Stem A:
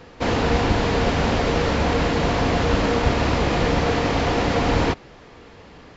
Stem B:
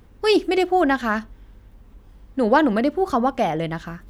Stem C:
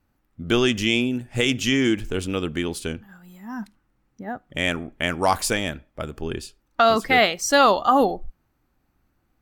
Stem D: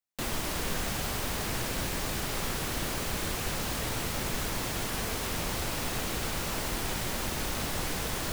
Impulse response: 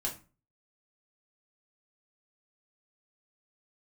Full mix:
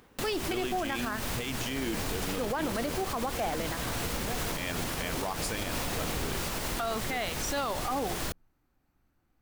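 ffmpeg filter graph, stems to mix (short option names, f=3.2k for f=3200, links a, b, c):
-filter_complex "[0:a]adelay=1400,volume=-16dB[a];[1:a]highpass=f=530:p=1,volume=1.5dB[b];[2:a]volume=-5.5dB,asplit=2[c][d];[d]volume=-18.5dB[e];[3:a]volume=3dB[f];[4:a]atrim=start_sample=2205[g];[e][g]afir=irnorm=-1:irlink=0[h];[a][b][c][f][h]amix=inputs=5:normalize=0,alimiter=limit=-22.5dB:level=0:latency=1:release=150"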